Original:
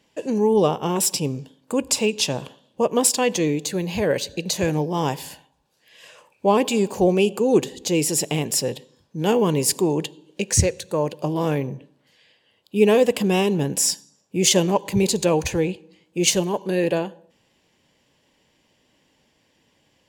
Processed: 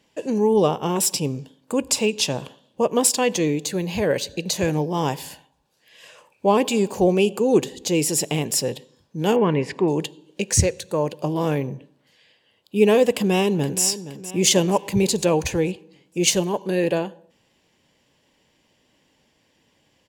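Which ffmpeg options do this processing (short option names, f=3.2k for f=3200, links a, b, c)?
-filter_complex "[0:a]asettb=1/sr,asplit=3[a][b][c];[a]atrim=end=9.364[d];[b]atrim=start=9.36:end=9.88,asetpts=PTS-STARTPTS,afade=t=in:d=0.004:c=qsin,afade=t=out:st=0.516:d=0.004:c=qsin,lowpass=f=2k:t=q:w=2.2[e];[c]atrim=start=9.876[f];[d][e]acrossfade=d=0.004:c1=hsin:c2=qsin[g];[g][f]acrossfade=d=0.004:c1=qsin:c2=hsin,asplit=2[h][i];[i]afade=t=in:st=13.13:d=0.01,afade=t=out:st=13.83:d=0.01,aecho=0:1:470|940|1410|1880|2350:0.211349|0.105674|0.0528372|0.0264186|0.0132093[j];[h][j]amix=inputs=2:normalize=0"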